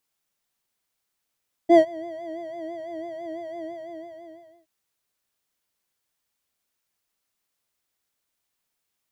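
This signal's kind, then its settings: synth patch with vibrato E5, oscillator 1 square, oscillator 2 triangle, interval -12 st, noise -25 dB, filter bandpass, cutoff 110 Hz, Q 2.6, filter envelope 1.5 oct, filter decay 0.09 s, filter sustain 10%, attack 92 ms, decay 0.07 s, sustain -22 dB, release 1.08 s, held 1.89 s, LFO 6 Hz, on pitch 76 cents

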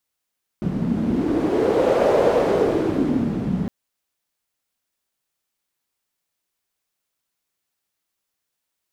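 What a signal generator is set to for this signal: wind-like swept noise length 3.06 s, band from 190 Hz, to 540 Hz, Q 3.9, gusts 1, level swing 5.5 dB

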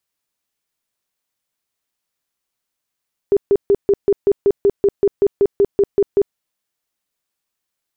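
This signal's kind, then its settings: tone bursts 401 Hz, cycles 19, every 0.19 s, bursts 16, -9 dBFS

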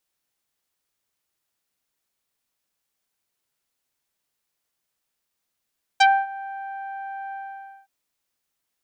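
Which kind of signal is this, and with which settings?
synth note saw G5 24 dB/octave, low-pass 1.5 kHz, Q 0.96, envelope 2.5 oct, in 0.07 s, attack 11 ms, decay 0.25 s, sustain -20 dB, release 0.54 s, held 1.33 s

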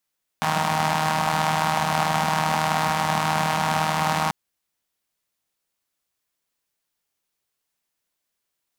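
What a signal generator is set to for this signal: four-cylinder engine model, steady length 3.89 s, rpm 4700, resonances 190/820 Hz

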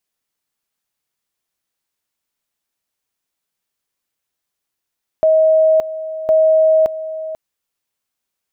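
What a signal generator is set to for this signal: two-level tone 634 Hz -8.5 dBFS, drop 14 dB, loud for 0.57 s, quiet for 0.49 s, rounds 2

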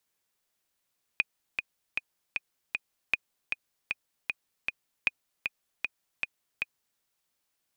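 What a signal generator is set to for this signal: metronome 155 bpm, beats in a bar 5, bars 3, 2.48 kHz, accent 5.5 dB -10.5 dBFS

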